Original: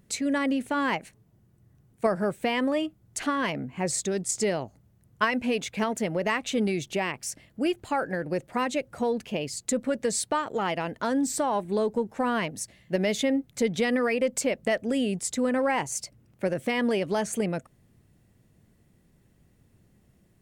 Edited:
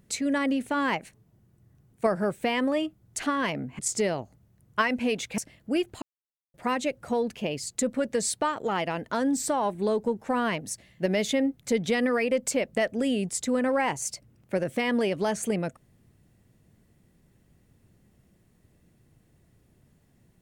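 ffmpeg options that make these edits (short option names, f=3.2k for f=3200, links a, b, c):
-filter_complex "[0:a]asplit=5[a][b][c][d][e];[a]atrim=end=3.792[f];[b]atrim=start=4.218:end=5.812[g];[c]atrim=start=7.278:end=7.92,asetpts=PTS-STARTPTS,afade=t=out:st=0.638:d=0.004:c=hsin[h];[d]atrim=start=7.92:end=8.44,asetpts=PTS-STARTPTS,volume=0[i];[e]atrim=start=8.44,asetpts=PTS-STARTPTS,afade=t=in:d=0.004:c=hsin[j];[f][g]acrossfade=d=0.004:c1=hsin:c2=hsin[k];[h][i][j]concat=n=3:v=0:a=1[l];[k][l]acrossfade=d=0.004:c1=hsin:c2=hsin"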